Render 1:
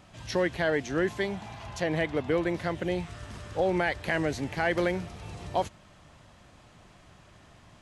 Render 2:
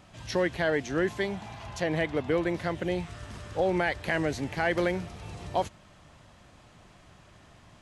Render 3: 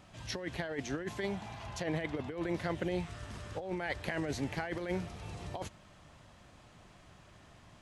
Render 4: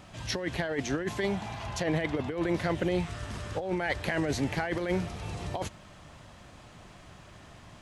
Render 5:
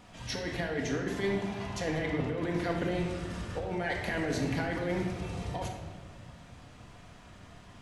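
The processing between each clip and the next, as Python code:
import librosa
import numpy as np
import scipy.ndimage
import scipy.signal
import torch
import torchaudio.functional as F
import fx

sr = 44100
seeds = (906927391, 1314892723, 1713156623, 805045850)

y1 = x
y2 = fx.over_compress(y1, sr, threshold_db=-29.0, ratio=-0.5)
y2 = F.gain(torch.from_numpy(y2), -5.5).numpy()
y3 = 10.0 ** (-23.0 / 20.0) * np.tanh(y2 / 10.0 ** (-23.0 / 20.0))
y3 = F.gain(torch.from_numpy(y3), 7.0).numpy()
y4 = fx.room_shoebox(y3, sr, seeds[0], volume_m3=1300.0, walls='mixed', distance_m=1.8)
y4 = F.gain(torch.from_numpy(y4), -5.0).numpy()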